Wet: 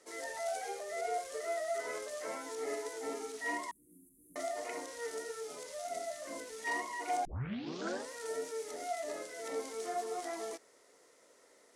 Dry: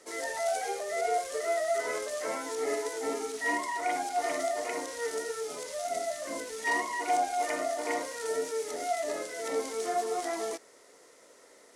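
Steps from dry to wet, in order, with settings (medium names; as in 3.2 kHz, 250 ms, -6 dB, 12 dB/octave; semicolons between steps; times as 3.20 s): 3.71–4.36 s: inverse Chebyshev band-stop 670–4900 Hz, stop band 60 dB; 7.25 s: tape start 0.87 s; trim -7 dB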